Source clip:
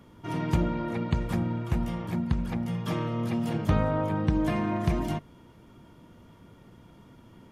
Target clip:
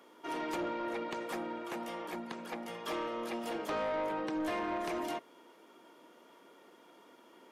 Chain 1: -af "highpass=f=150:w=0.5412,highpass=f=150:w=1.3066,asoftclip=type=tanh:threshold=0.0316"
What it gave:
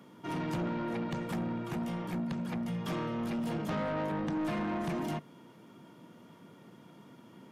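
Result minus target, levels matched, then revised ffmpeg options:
125 Hz band +16.0 dB
-af "highpass=f=340:w=0.5412,highpass=f=340:w=1.3066,asoftclip=type=tanh:threshold=0.0316"

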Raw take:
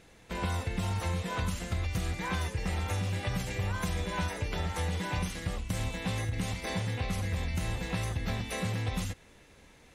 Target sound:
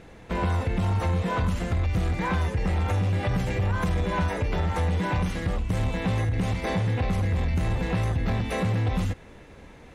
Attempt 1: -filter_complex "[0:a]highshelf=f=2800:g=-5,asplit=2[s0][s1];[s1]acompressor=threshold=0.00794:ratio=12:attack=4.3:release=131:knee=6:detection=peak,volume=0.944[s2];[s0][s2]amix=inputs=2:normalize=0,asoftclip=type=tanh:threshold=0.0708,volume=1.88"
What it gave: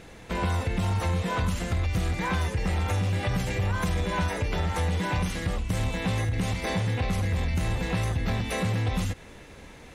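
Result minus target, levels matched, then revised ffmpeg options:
compression: peak gain reduction +10 dB; 4 kHz band +4.5 dB
-filter_complex "[0:a]highshelf=f=2800:g=-14,asplit=2[s0][s1];[s1]acompressor=threshold=0.0282:ratio=12:attack=4.3:release=131:knee=6:detection=peak,volume=0.944[s2];[s0][s2]amix=inputs=2:normalize=0,asoftclip=type=tanh:threshold=0.0708,volume=1.88"

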